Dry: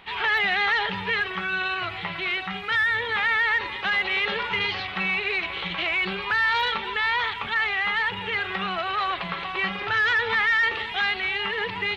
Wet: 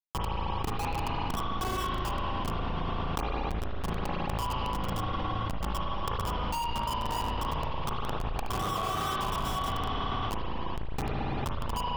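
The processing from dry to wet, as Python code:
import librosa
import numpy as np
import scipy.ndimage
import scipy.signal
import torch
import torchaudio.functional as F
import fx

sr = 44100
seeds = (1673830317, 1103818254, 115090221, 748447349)

y = fx.envelope_sharpen(x, sr, power=2.0)
y = scipy.signal.sosfilt(scipy.signal.butter(2, 540.0, 'highpass', fs=sr, output='sos'), y)
y = fx.rider(y, sr, range_db=10, speed_s=0.5)
y = fx.formant_cascade(y, sr, vowel='a')
y = fx.notch_comb(y, sr, f0_hz=720.0)
y = fx.schmitt(y, sr, flips_db=-40.0)
y = fx.rev_spring(y, sr, rt60_s=1.8, pass_ms=(36, 55), chirp_ms=45, drr_db=-5.0)
y = fx.env_flatten(y, sr, amount_pct=100)
y = y * 10.0 ** (6.5 / 20.0)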